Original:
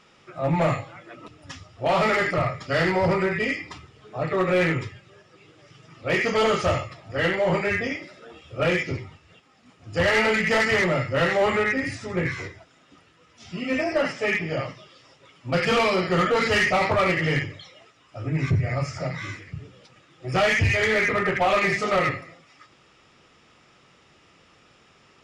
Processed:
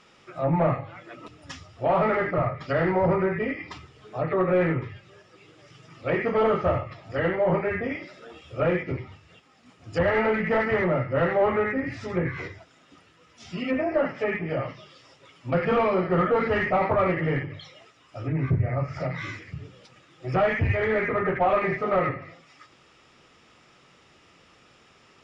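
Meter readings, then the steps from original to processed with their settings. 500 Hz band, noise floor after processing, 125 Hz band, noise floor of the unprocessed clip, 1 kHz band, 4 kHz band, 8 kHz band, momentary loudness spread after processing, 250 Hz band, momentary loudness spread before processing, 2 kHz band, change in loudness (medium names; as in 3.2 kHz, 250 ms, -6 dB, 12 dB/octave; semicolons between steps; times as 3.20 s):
0.0 dB, -58 dBFS, -1.0 dB, -57 dBFS, -1.0 dB, -12.5 dB, under -15 dB, 17 LU, -0.5 dB, 15 LU, -6.5 dB, -2.0 dB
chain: low-pass that closes with the level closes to 1.4 kHz, closed at -22 dBFS; hum notches 50/100/150/200 Hz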